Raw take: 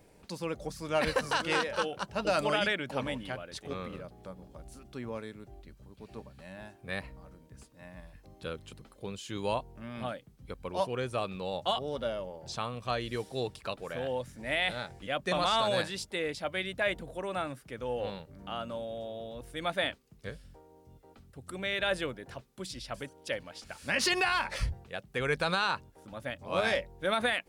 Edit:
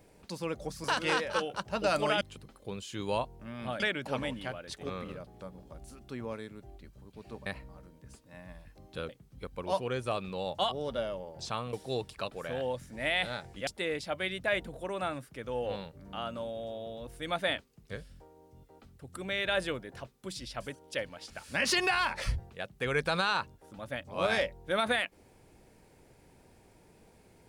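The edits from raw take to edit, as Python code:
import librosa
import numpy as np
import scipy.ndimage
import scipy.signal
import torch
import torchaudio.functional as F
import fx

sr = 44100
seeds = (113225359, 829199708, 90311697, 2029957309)

y = fx.edit(x, sr, fx.cut(start_s=0.84, length_s=0.43),
    fx.cut(start_s=6.3, length_s=0.64),
    fx.move(start_s=8.57, length_s=1.59, to_s=2.64),
    fx.cut(start_s=12.8, length_s=0.39),
    fx.cut(start_s=15.13, length_s=0.88), tone=tone)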